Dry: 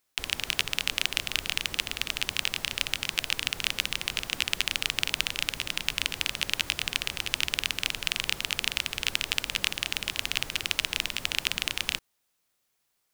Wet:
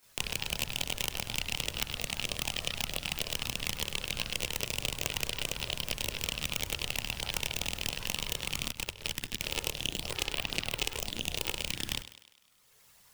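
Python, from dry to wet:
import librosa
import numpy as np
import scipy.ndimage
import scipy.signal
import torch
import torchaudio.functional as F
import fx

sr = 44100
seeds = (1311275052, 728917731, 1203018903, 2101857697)

y = fx.tracing_dist(x, sr, depth_ms=0.13)
y = fx.chorus_voices(y, sr, voices=6, hz=0.79, base_ms=27, depth_ms=1.2, mix_pct=70)
y = fx.echo_thinned(y, sr, ms=101, feedback_pct=41, hz=200.0, wet_db=-15.0)
y = fx.level_steps(y, sr, step_db=17, at=(8.69, 9.42))
y = fx.hum_notches(y, sr, base_hz=50, count=2)
y = fx.band_squash(y, sr, depth_pct=70)
y = y * librosa.db_to_amplitude(-3.0)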